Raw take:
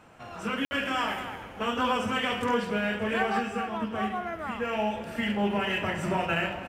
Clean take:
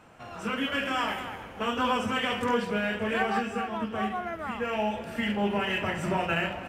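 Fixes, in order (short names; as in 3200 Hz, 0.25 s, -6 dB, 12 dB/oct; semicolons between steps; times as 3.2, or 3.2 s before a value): room tone fill 0.65–0.71; inverse comb 0.102 s -15.5 dB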